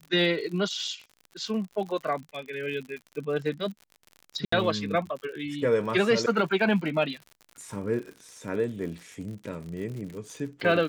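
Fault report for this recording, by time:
crackle 67/s -36 dBFS
4.45–4.52 gap 74 ms

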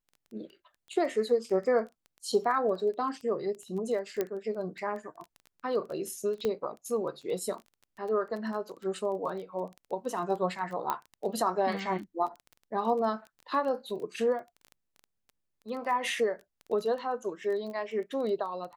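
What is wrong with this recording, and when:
crackle 14/s -37 dBFS
4.21 pop -16 dBFS
6.45 pop -18 dBFS
10.9 pop -16 dBFS

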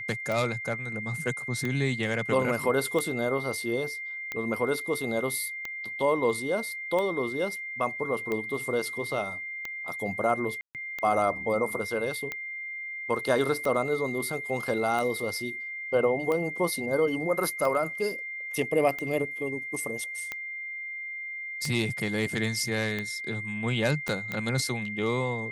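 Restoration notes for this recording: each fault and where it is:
tick 45 rpm
tone 2100 Hz -34 dBFS
10.61–10.75 gap 0.138 s
24.08 pop -17 dBFS

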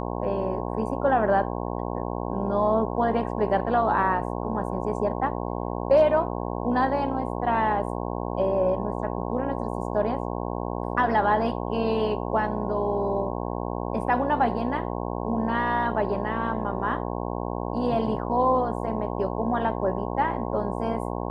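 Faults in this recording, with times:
buzz 60 Hz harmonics 18 -30 dBFS

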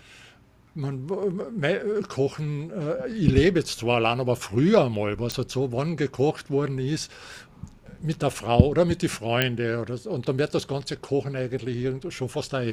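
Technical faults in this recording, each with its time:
5.32 pop
9.42 pop -7 dBFS

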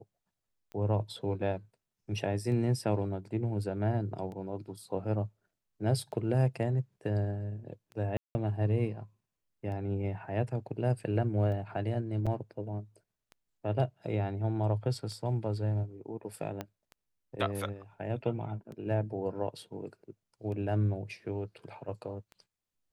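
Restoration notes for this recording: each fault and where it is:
tick 33 1/3 rpm -33 dBFS
8.17–8.35 gap 0.18 s
12.26–12.27 gap 6.1 ms
16.61 pop -22 dBFS

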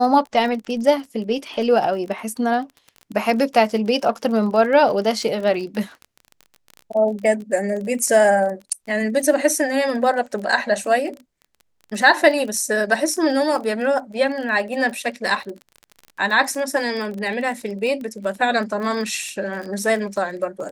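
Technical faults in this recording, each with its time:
crackle 26/s -28 dBFS

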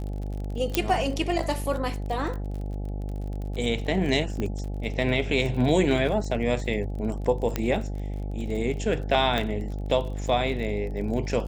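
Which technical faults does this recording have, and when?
buzz 50 Hz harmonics 17 -31 dBFS
crackle 31/s -33 dBFS
0.75 pop -6 dBFS
4.4 pop -18 dBFS
7.56 pop -11 dBFS
9.38 pop -13 dBFS

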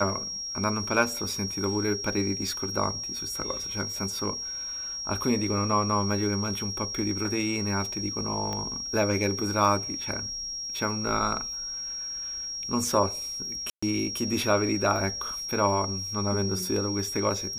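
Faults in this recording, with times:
tone 5600 Hz -32 dBFS
8.53 pop -19 dBFS
13.7–13.82 gap 0.125 s

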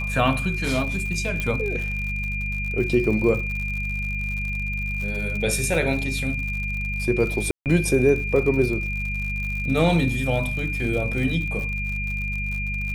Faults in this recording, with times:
crackle 79/s -30 dBFS
hum 50 Hz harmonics 4 -29 dBFS
tone 2400 Hz -28 dBFS
1.4 pop -13 dBFS
5.74 gap 2.2 ms
7.51–7.66 gap 0.148 s

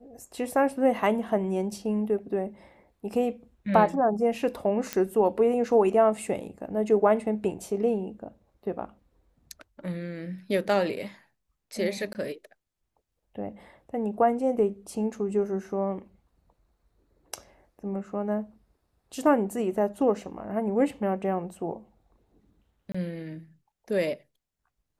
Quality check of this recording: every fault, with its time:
4.93 pop -12 dBFS
12.13–12.15 gap 19 ms
22.92–22.95 gap 25 ms

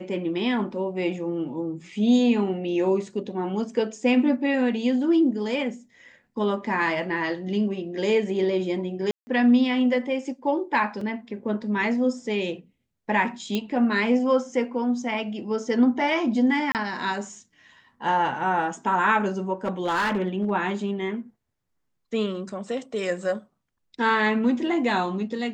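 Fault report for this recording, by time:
9.11–9.27 gap 0.16 s
11.01 gap 3.5 ms
13.55 pop -13 dBFS
16.72–16.75 gap 28 ms
19.65–20.51 clipped -19.5 dBFS

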